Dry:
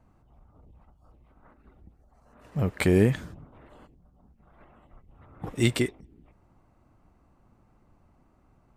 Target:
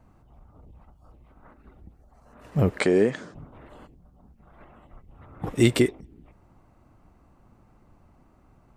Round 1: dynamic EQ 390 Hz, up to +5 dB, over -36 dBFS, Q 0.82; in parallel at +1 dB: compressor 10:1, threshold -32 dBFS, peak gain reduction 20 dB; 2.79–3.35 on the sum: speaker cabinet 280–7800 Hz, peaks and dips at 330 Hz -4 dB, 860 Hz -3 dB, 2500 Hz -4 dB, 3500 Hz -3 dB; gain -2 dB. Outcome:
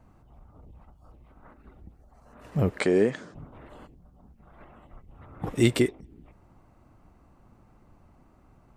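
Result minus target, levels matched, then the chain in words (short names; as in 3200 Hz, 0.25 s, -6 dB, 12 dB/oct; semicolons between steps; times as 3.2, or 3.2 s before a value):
compressor: peak gain reduction +9 dB
dynamic EQ 390 Hz, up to +5 dB, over -36 dBFS, Q 0.82; in parallel at +1 dB: compressor 10:1, threshold -22 dBFS, peak gain reduction 11 dB; 2.79–3.35 on the sum: speaker cabinet 280–7800 Hz, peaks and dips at 330 Hz -4 dB, 860 Hz -3 dB, 2500 Hz -4 dB, 3500 Hz -3 dB; gain -2 dB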